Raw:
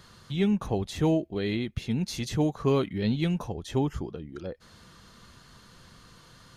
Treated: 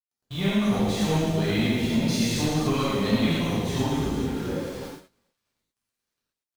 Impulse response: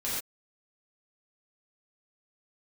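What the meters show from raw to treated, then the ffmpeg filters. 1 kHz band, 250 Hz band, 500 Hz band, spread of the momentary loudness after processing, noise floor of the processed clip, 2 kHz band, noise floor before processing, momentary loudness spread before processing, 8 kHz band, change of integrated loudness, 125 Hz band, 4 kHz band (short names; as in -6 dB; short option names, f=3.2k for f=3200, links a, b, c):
+6.0 dB, +4.5 dB, +1.5 dB, 8 LU, under -85 dBFS, +8.5 dB, -55 dBFS, 13 LU, +9.0 dB, +4.0 dB, +3.0 dB, +8.5 dB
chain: -filter_complex "[0:a]equalizer=f=220:w=2.2:g=5,aecho=1:1:110|253|438.9|680.6|994.7:0.631|0.398|0.251|0.158|0.1,acrossover=split=350|860|1600[a][b][c][d];[a]asoftclip=type=tanh:threshold=-30dB[e];[b]acompressor=threshold=-39dB:ratio=6[f];[e][f][c][d]amix=inputs=4:normalize=0,aeval=exprs='0.119*(cos(1*acos(clip(val(0)/0.119,-1,1)))-cos(1*PI/2))+0.0133*(cos(2*acos(clip(val(0)/0.119,-1,1)))-cos(2*PI/2))+0.00473*(cos(4*acos(clip(val(0)/0.119,-1,1)))-cos(4*PI/2))':c=same,aeval=exprs='val(0)*gte(abs(val(0)),0.00891)':c=same,agate=range=-27dB:threshold=-42dB:ratio=16:detection=peak[g];[1:a]atrim=start_sample=2205[h];[g][h]afir=irnorm=-1:irlink=0"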